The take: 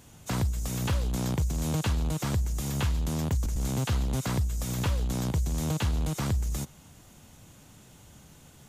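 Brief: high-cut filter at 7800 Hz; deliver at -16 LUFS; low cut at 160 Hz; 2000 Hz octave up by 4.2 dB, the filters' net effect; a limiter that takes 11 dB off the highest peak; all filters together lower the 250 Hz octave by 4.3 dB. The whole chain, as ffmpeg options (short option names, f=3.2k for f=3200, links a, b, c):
-af "highpass=160,lowpass=7.8k,equalizer=f=250:t=o:g=-4,equalizer=f=2k:t=o:g=5.5,volume=23dB,alimiter=limit=-6dB:level=0:latency=1"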